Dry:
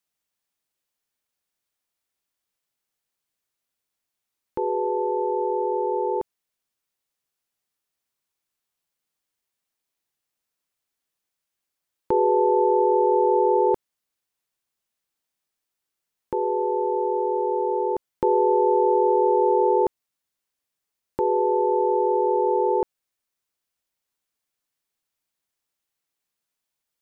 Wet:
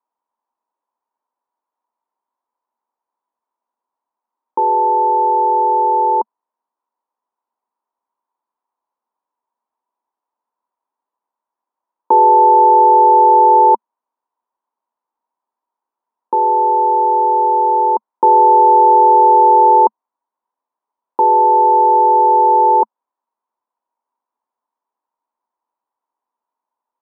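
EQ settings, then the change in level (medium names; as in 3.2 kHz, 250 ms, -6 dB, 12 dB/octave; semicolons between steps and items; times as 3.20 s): elliptic high-pass 220 Hz; resonant low-pass 960 Hz, resonance Q 9.8; +1.5 dB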